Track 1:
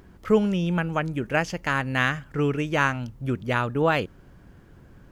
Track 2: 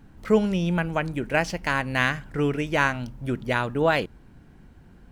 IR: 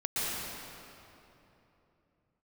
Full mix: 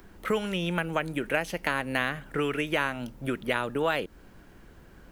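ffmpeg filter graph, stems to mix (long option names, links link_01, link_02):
-filter_complex "[0:a]highpass=frequency=350:poles=1,highshelf=frequency=11000:gain=7.5,volume=1dB[link_01];[1:a]equalizer=frequency=125:width_type=o:width=1:gain=-12,equalizer=frequency=250:width_type=o:width=1:gain=-4,equalizer=frequency=1000:width_type=o:width=1:gain=-6,volume=1.5dB[link_02];[link_01][link_02]amix=inputs=2:normalize=0,acrossover=split=91|990|3100[link_03][link_04][link_05][link_06];[link_03]acompressor=threshold=-50dB:ratio=4[link_07];[link_04]acompressor=threshold=-28dB:ratio=4[link_08];[link_05]acompressor=threshold=-32dB:ratio=4[link_09];[link_06]acompressor=threshold=-37dB:ratio=4[link_10];[link_07][link_08][link_09][link_10]amix=inputs=4:normalize=0"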